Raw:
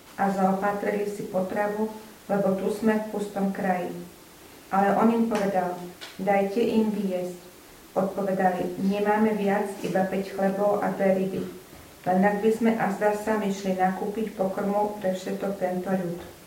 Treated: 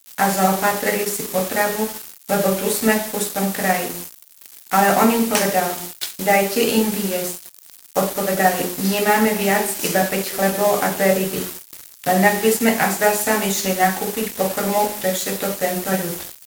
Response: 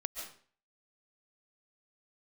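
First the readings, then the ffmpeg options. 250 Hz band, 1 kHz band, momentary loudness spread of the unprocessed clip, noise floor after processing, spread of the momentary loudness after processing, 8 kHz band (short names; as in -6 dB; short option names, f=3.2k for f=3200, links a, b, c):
+4.0 dB, +6.5 dB, 9 LU, -46 dBFS, 9 LU, +22.0 dB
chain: -af "aeval=exprs='sgn(val(0))*max(abs(val(0))-0.0075,0)':c=same,crystalizer=i=7.5:c=0,volume=4.5dB"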